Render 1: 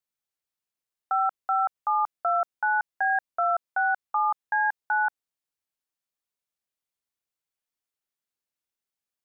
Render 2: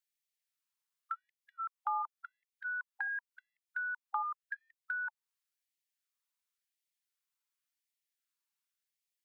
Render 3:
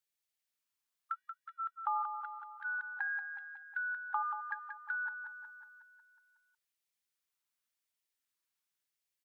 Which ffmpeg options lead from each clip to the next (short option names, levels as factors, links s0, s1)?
-filter_complex "[0:a]acrossover=split=450[s0][s1];[s1]acompressor=threshold=0.02:ratio=4[s2];[s0][s2]amix=inputs=2:normalize=0,afftfilt=real='re*gte(b*sr/1024,800*pow(1800/800,0.5+0.5*sin(2*PI*0.91*pts/sr)))':imag='im*gte(b*sr/1024,800*pow(1800/800,0.5+0.5*sin(2*PI*0.91*pts/sr)))':win_size=1024:overlap=0.75"
-af "aecho=1:1:183|366|549|732|915|1098|1281|1464:0.422|0.249|0.147|0.0866|0.0511|0.0301|0.0178|0.0105"